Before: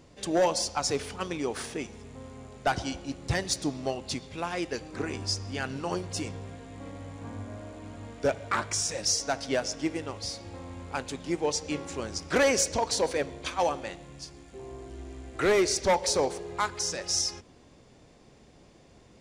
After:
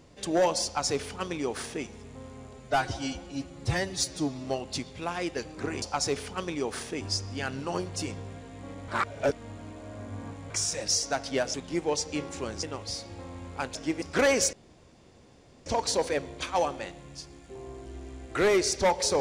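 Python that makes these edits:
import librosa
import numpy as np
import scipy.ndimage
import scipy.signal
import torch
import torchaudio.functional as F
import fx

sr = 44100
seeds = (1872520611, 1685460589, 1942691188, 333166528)

y = fx.edit(x, sr, fx.duplicate(start_s=0.65, length_s=1.19, to_s=5.18),
    fx.stretch_span(start_s=2.53, length_s=1.28, factor=1.5),
    fx.reverse_span(start_s=7.05, length_s=1.62),
    fx.swap(start_s=9.71, length_s=0.27, other_s=11.1, other_length_s=1.09),
    fx.insert_room_tone(at_s=12.7, length_s=1.13), tone=tone)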